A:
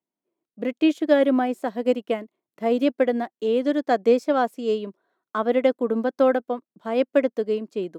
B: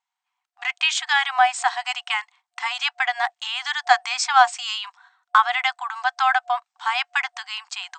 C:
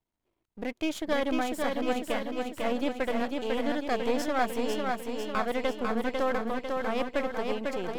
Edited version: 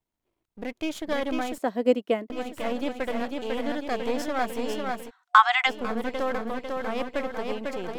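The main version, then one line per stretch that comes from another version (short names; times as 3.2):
C
1.58–2.3 from A
5.08–5.68 from B, crossfade 0.06 s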